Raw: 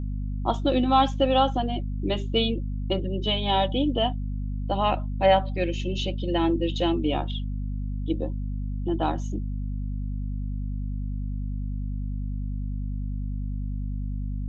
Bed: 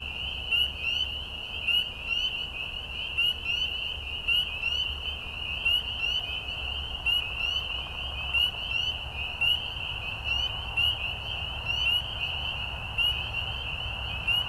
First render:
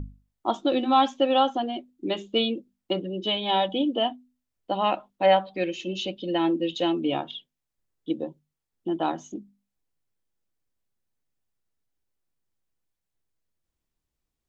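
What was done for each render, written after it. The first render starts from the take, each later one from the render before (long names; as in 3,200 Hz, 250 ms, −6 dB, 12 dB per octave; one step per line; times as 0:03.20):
mains-hum notches 50/100/150/200/250 Hz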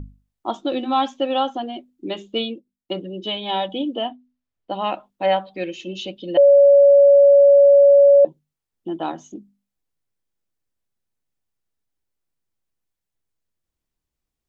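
0:02.39–0:02.92: expander for the loud parts, over −44 dBFS
0:04.01–0:04.71: high-frequency loss of the air 120 metres
0:06.37–0:08.25: beep over 564 Hz −7.5 dBFS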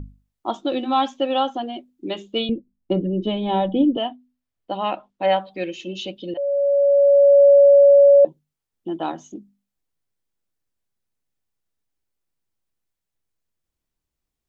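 0:02.49–0:03.97: spectral tilt −4.5 dB per octave
0:04.77–0:05.30: high-frequency loss of the air 61 metres
0:06.34–0:07.45: fade in linear, from −15.5 dB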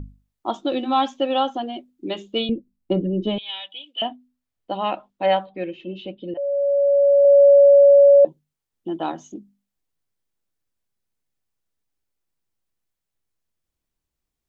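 0:03.38–0:04.02: high-pass with resonance 2,800 Hz, resonance Q 2.1
0:05.46–0:07.25: high-frequency loss of the air 440 metres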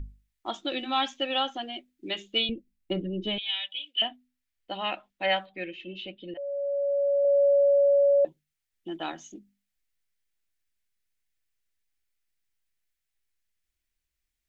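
octave-band graphic EQ 125/250/500/1,000/2,000 Hz −10/−7/−7/−9/+6 dB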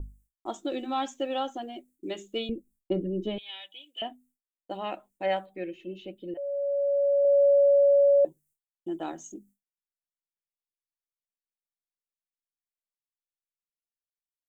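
downward expander −56 dBFS
drawn EQ curve 230 Hz 0 dB, 380 Hz +4 dB, 3,100 Hz −12 dB, 4,800 Hz −8 dB, 7,900 Hz +10 dB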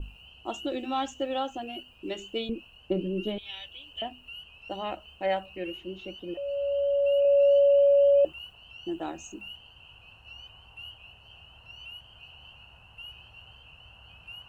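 mix in bed −18.5 dB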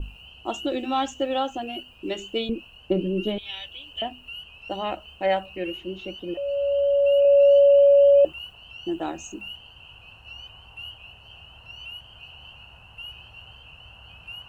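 level +5 dB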